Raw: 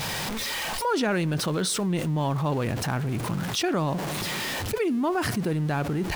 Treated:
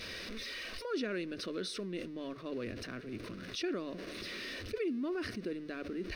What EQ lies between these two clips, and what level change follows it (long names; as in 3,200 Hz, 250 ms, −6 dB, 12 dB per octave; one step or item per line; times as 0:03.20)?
Savitzky-Golay smoothing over 15 samples
phaser with its sweep stopped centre 350 Hz, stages 4
notch filter 3,200 Hz, Q 10
−8.5 dB